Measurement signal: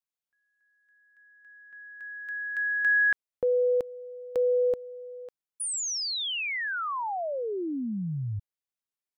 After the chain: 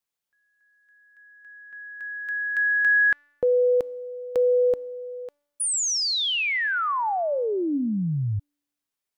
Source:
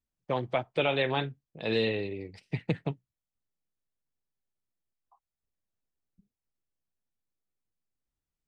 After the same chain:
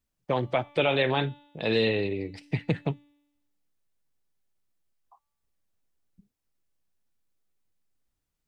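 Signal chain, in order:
in parallel at +2 dB: brickwall limiter −24.5 dBFS
on the sum: tuned comb filter 290 Hz, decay 0.99 s, mix 50%
level +5 dB

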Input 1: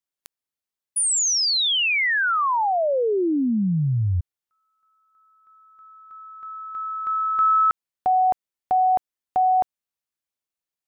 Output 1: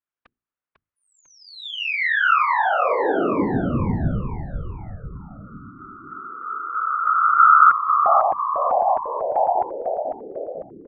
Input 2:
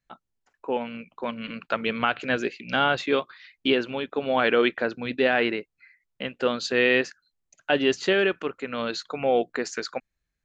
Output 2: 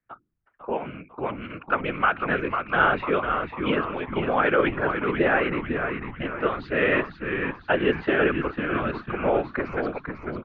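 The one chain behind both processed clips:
low-pass filter 2,500 Hz 24 dB per octave
parametric band 1,300 Hz +7 dB 0.49 octaves
mains-hum notches 60/120/180/240/300 Hz
random phases in short frames
echo with shifted repeats 498 ms, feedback 51%, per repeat −100 Hz, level −6 dB
level −1 dB

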